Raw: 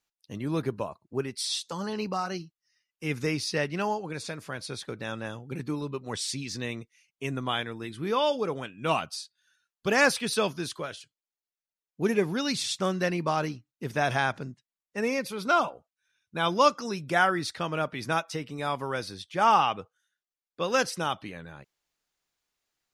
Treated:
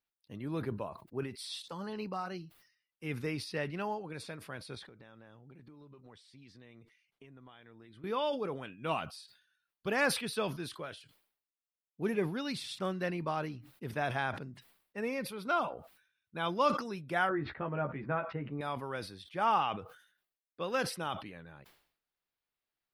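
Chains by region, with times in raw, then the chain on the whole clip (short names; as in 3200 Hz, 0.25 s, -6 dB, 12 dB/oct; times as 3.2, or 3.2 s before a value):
4.75–8.04 notch 2600 Hz, Q 20 + compressor 16:1, threshold -43 dBFS + air absorption 53 m
17.29–18.61 LPF 2200 Hz 24 dB/oct + tilt shelf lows +3 dB + doubler 14 ms -4.5 dB
whole clip: bell 6600 Hz -13 dB 0.72 oct; sustainer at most 97 dB/s; gain -7.5 dB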